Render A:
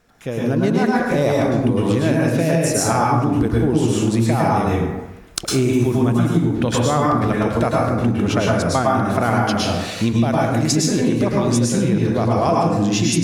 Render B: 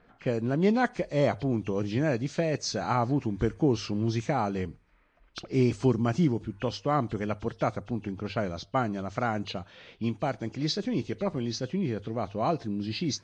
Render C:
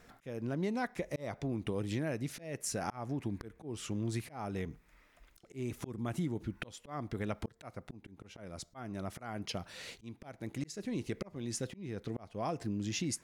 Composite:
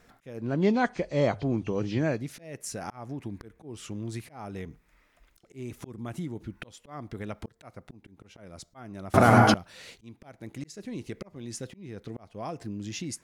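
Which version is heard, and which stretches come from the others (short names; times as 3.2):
C
0.46–2.18 from B, crossfade 0.24 s
9.14–9.54 from A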